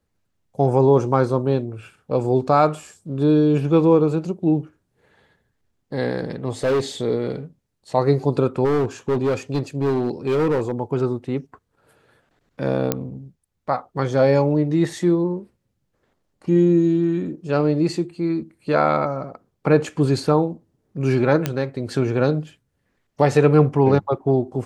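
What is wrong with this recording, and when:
0:06.63–0:06.80: clipping −16 dBFS
0:08.64–0:10.71: clipping −16 dBFS
0:12.92: click −4 dBFS
0:21.46: click −7 dBFS

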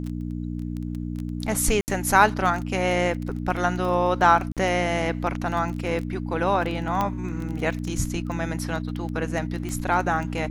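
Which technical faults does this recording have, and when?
surface crackle 12 per second −28 dBFS
mains hum 60 Hz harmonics 5 −30 dBFS
0:01.81–0:01.88: drop-out 69 ms
0:04.52–0:04.57: drop-out 47 ms
0:07.01: click −11 dBFS
0:09.69: click −19 dBFS

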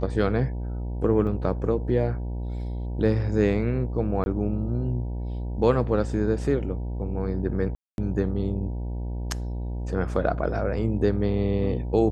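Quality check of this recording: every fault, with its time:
mains buzz 60 Hz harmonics 16 −30 dBFS
0:01.27: drop-out 3.4 ms
0:04.24–0:04.26: drop-out 21 ms
0:07.75–0:07.98: drop-out 231 ms

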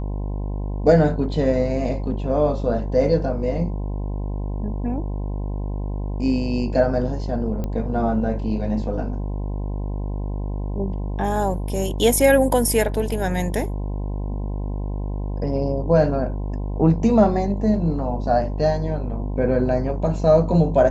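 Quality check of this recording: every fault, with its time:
mains buzz 50 Hz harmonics 21 −26 dBFS
0:07.64: click −16 dBFS

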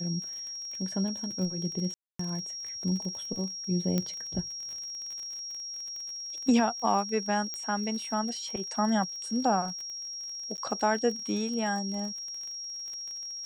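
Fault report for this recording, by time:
surface crackle 31 per second −36 dBFS
whistle 5,600 Hz −36 dBFS
0:01.94–0:02.19: drop-out 254 ms
0:03.98: click −15 dBFS
0:07.54: click −21 dBFS
0:10.57–0:10.58: drop-out 9.7 ms

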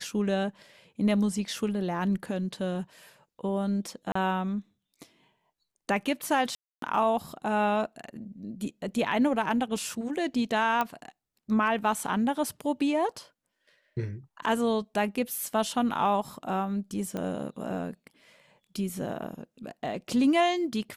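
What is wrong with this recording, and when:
0:04.12–0:04.15: drop-out 34 ms
0:06.55–0:06.82: drop-out 273 ms
0:10.81: click −14 dBFS
0:17.17: click −20 dBFS

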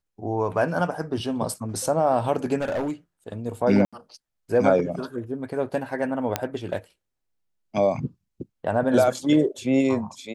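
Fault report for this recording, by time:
0:02.61–0:02.92: clipping −22.5 dBFS
0:03.85–0:03.93: drop-out 76 ms
0:06.36: click −7 dBFS

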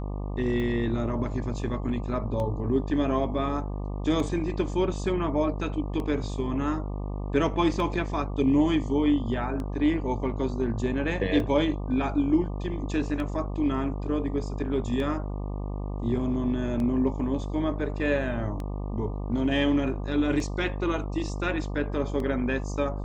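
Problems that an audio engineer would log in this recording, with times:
mains buzz 50 Hz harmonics 24 −32 dBFS
scratch tick 33 1/3 rpm −22 dBFS

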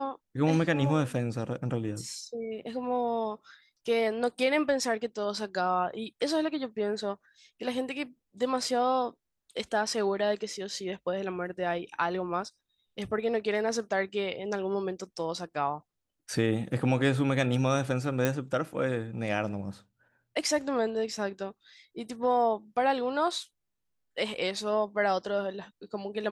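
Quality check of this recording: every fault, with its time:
0:18.25: click −12 dBFS

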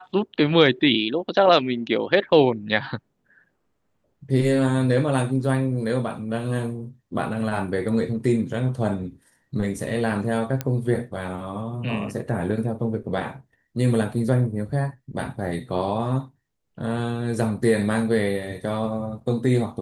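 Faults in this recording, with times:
0:10.61: click −11 dBFS

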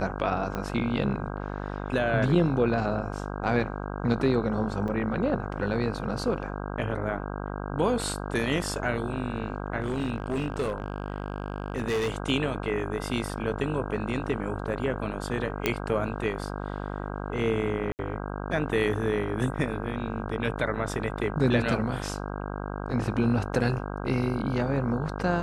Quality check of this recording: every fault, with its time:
mains buzz 50 Hz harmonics 32 −34 dBFS
0:00.55: click −17 dBFS
0:04.88: drop-out 3.2 ms
0:09.80–0:12.16: clipping −23.5 dBFS
0:15.66: click −9 dBFS
0:17.92–0:17.99: drop-out 69 ms

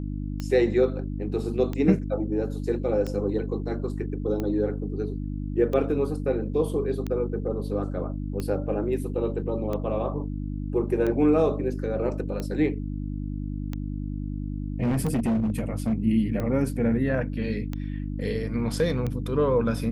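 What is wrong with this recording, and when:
mains hum 50 Hz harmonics 6 −31 dBFS
scratch tick 45 rpm −18 dBFS
0:14.82–0:15.94: clipping −20.5 dBFS

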